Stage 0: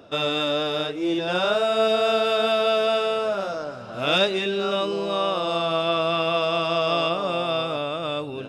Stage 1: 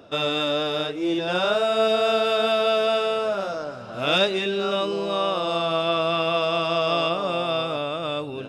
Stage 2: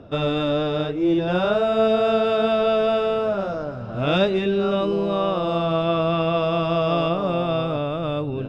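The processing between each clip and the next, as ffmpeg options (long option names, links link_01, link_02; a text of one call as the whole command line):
ffmpeg -i in.wav -af anull out.wav
ffmpeg -i in.wav -af "aemphasis=mode=reproduction:type=riaa" out.wav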